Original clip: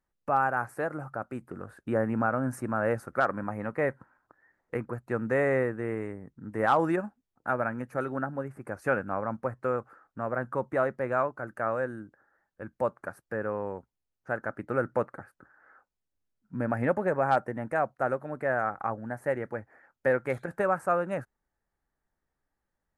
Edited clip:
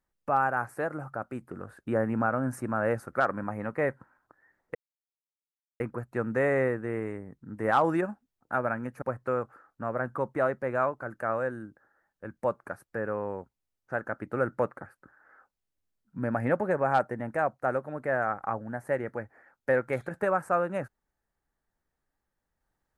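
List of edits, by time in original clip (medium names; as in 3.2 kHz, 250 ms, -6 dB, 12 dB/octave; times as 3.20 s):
4.75 s: insert silence 1.05 s
7.97–9.39 s: delete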